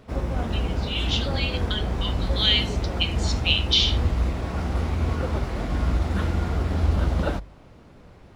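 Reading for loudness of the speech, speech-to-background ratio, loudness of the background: −24.5 LKFS, 2.0 dB, −26.5 LKFS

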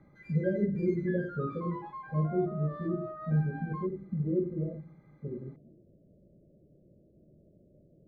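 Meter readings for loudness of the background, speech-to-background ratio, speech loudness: −44.0 LKFS, 11.0 dB, −33.0 LKFS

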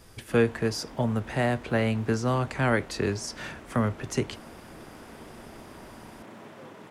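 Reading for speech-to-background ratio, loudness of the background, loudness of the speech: 19.0 dB, −47.0 LKFS, −28.0 LKFS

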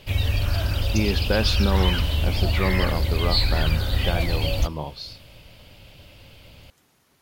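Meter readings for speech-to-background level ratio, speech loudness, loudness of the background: −4.5 dB, −28.5 LKFS, −24.0 LKFS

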